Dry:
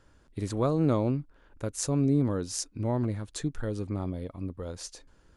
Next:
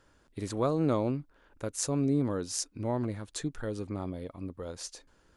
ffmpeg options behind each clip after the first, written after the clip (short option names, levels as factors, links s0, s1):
-af "lowshelf=f=190:g=-7.5"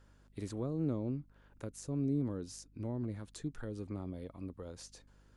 -filter_complex "[0:a]acrossover=split=390[s0][s1];[s1]acompressor=threshold=0.00631:ratio=6[s2];[s0][s2]amix=inputs=2:normalize=0,aeval=exprs='val(0)+0.00126*(sin(2*PI*50*n/s)+sin(2*PI*2*50*n/s)/2+sin(2*PI*3*50*n/s)/3+sin(2*PI*4*50*n/s)/4+sin(2*PI*5*50*n/s)/5)':c=same,volume=0.596"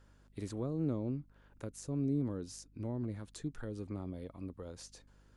-af anull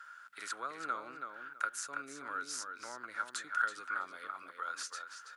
-filter_complex "[0:a]highpass=f=1400:t=q:w=11,asplit=2[s0][s1];[s1]adelay=328,lowpass=f=4200:p=1,volume=0.501,asplit=2[s2][s3];[s3]adelay=328,lowpass=f=4200:p=1,volume=0.2,asplit=2[s4][s5];[s5]adelay=328,lowpass=f=4200:p=1,volume=0.2[s6];[s0][s2][s4][s6]amix=inputs=4:normalize=0,volume=2.51"